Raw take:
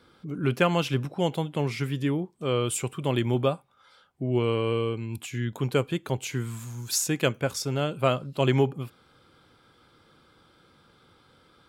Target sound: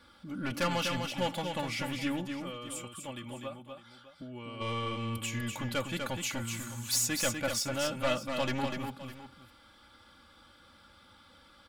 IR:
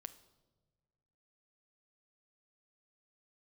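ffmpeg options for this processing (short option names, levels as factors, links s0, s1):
-filter_complex "[0:a]equalizer=f=360:t=o:w=1.1:g=-10.5,asplit=3[s0][s1][s2];[s0]afade=t=out:st=2.33:d=0.02[s3];[s1]acompressor=threshold=0.00501:ratio=2.5,afade=t=in:st=2.33:d=0.02,afade=t=out:st=4.6:d=0.02[s4];[s2]afade=t=in:st=4.6:d=0.02[s5];[s3][s4][s5]amix=inputs=3:normalize=0,asoftclip=type=tanh:threshold=0.0473,aecho=1:1:3.5:0.79,aecho=1:1:247|607:0.531|0.168"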